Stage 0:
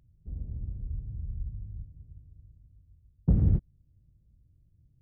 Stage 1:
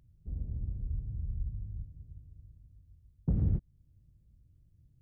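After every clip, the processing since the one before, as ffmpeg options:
-af "alimiter=limit=-20dB:level=0:latency=1:release=301"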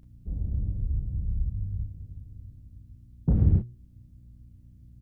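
-af "bandreject=f=120.5:t=h:w=4,bandreject=f=241:t=h:w=4,bandreject=f=361.5:t=h:w=4,bandreject=f=482:t=h:w=4,aeval=exprs='val(0)+0.001*(sin(2*PI*60*n/s)+sin(2*PI*2*60*n/s)/2+sin(2*PI*3*60*n/s)/3+sin(2*PI*4*60*n/s)/4+sin(2*PI*5*60*n/s)/5)':c=same,aecho=1:1:32|42:0.562|0.355,volume=6.5dB"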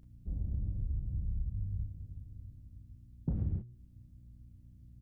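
-af "acompressor=threshold=-26dB:ratio=6,bandreject=f=440:w=12,volume=-4dB"

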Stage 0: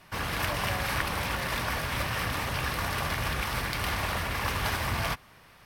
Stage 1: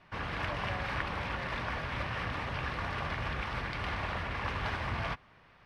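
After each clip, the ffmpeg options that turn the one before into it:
-af "lowpass=3.1k,volume=-4.5dB"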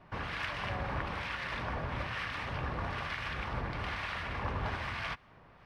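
-filter_complex "[0:a]asplit=2[a][b];[b]acompressor=threshold=-42dB:ratio=6,volume=-2dB[c];[a][c]amix=inputs=2:normalize=0,acrossover=split=1200[d][e];[d]aeval=exprs='val(0)*(1-0.7/2+0.7/2*cos(2*PI*1.1*n/s))':c=same[f];[e]aeval=exprs='val(0)*(1-0.7/2-0.7/2*cos(2*PI*1.1*n/s))':c=same[g];[f][g]amix=inputs=2:normalize=0"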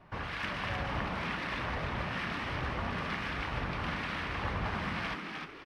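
-filter_complex "[0:a]asplit=6[a][b][c][d][e][f];[b]adelay=306,afreqshift=110,volume=-4.5dB[g];[c]adelay=612,afreqshift=220,volume=-12.9dB[h];[d]adelay=918,afreqshift=330,volume=-21.3dB[i];[e]adelay=1224,afreqshift=440,volume=-29.7dB[j];[f]adelay=1530,afreqshift=550,volume=-38.1dB[k];[a][g][h][i][j][k]amix=inputs=6:normalize=0"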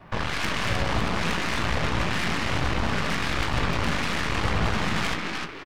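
-filter_complex "[0:a]acrossover=split=500|2600[a][b][c];[b]asoftclip=type=tanh:threshold=-39dB[d];[a][d][c]amix=inputs=3:normalize=0,aeval=exprs='0.0668*(cos(1*acos(clip(val(0)/0.0668,-1,1)))-cos(1*PI/2))+0.0119*(cos(8*acos(clip(val(0)/0.0668,-1,1)))-cos(8*PI/2))':c=same,asplit=2[e][f];[f]adelay=18,volume=-11dB[g];[e][g]amix=inputs=2:normalize=0,volume=9dB"

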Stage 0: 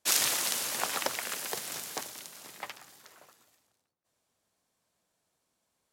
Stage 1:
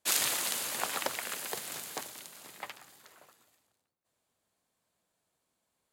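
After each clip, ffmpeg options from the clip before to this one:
-af "equalizer=f=5.6k:t=o:w=0.3:g=-5.5,volume=-1.5dB"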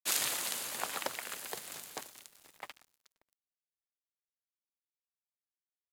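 -af "aeval=exprs='sgn(val(0))*max(abs(val(0))-0.00335,0)':c=same,volume=-2.5dB"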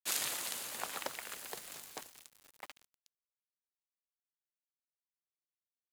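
-af "acrusher=bits=7:mix=0:aa=0.000001,volume=-3.5dB"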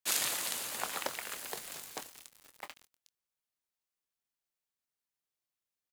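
-filter_complex "[0:a]asplit=2[a][b];[b]adelay=24,volume=-12.5dB[c];[a][c]amix=inputs=2:normalize=0,volume=3.5dB"

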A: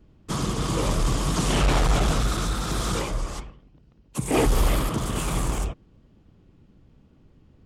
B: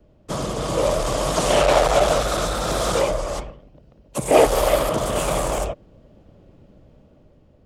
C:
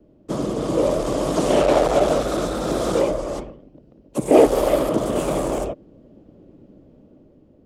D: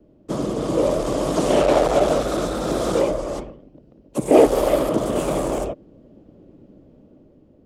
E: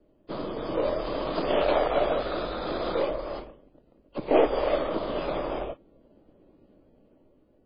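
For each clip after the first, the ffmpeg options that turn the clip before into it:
-filter_complex "[0:a]dynaudnorm=f=270:g=7:m=5.5dB,equalizer=f=590:t=o:w=0.62:g=14.5,acrossover=split=400|990|2600[a][b][c][d];[a]acompressor=threshold=-24dB:ratio=6[e];[e][b][c][d]amix=inputs=4:normalize=0,volume=-1dB"
-af "equalizer=f=300:t=o:w=1.7:g=14.5,volume=-6.5dB"
-af anull
-af "aeval=exprs='if(lt(val(0),0),0.708*val(0),val(0))':c=same,equalizer=f=140:w=0.42:g=-9.5,volume=-2.5dB" -ar 11025 -c:a libmp3lame -b:a 16k

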